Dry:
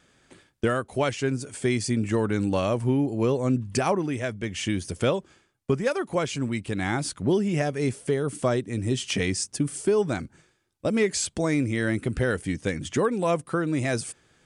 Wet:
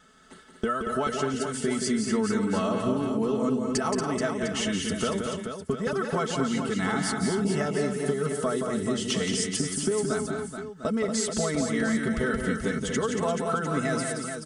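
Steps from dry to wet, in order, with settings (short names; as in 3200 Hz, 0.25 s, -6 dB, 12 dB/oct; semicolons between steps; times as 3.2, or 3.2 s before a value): bell 1300 Hz +10 dB 0.23 oct; notch 2400 Hz, Q 7; comb 4.6 ms, depth 82%; compressor, threshold -25 dBFS, peak gain reduction 11.5 dB; on a send: tapped delay 0.174/0.232/0.283/0.431/0.703 s -6/-7/-20/-7.5/-12 dB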